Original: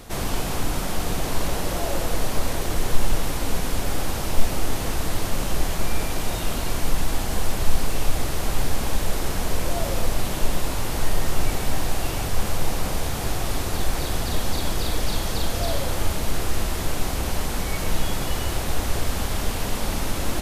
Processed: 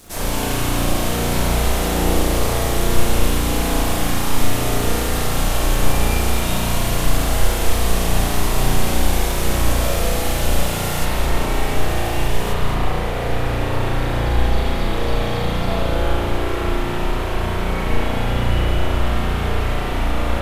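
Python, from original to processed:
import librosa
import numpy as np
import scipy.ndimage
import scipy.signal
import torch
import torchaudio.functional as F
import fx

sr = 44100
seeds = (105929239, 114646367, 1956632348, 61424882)

y = np.sign(x) * np.maximum(np.abs(x) - 10.0 ** (-49.0 / 20.0), 0.0)
y = fx.bass_treble(y, sr, bass_db=0, treble_db=fx.steps((0.0, 10.0), (11.04, 3.0), (12.52, -6.0)))
y = y + 10.0 ** (-8.0 / 20.0) * np.pad(y, (int(221 * sr / 1000.0), 0))[:len(y)]
y = fx.rev_spring(y, sr, rt60_s=1.9, pass_ms=(34,), chirp_ms=50, drr_db=-9.5)
y = F.gain(torch.from_numpy(y), -3.5).numpy()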